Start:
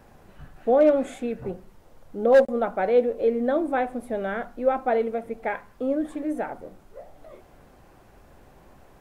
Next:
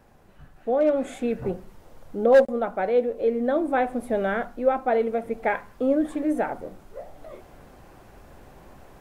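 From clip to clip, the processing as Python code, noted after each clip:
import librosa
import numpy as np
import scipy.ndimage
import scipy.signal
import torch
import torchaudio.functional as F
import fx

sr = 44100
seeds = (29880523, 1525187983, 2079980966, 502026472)

y = fx.rider(x, sr, range_db=4, speed_s=0.5)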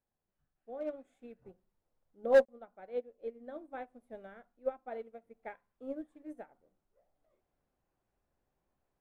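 y = fx.upward_expand(x, sr, threshold_db=-30.0, expansion=2.5)
y = y * librosa.db_to_amplitude(-6.5)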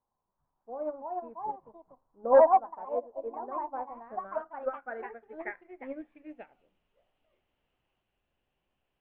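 y = fx.echo_pitch(x, sr, ms=437, semitones=3, count=2, db_per_echo=-3.0)
y = fx.filter_sweep_lowpass(y, sr, from_hz=1000.0, to_hz=2900.0, start_s=3.78, end_s=6.59, q=6.4)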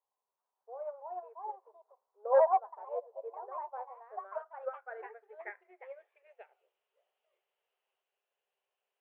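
y = fx.brickwall_highpass(x, sr, low_hz=370.0)
y = y * librosa.db_to_amplitude(-5.5)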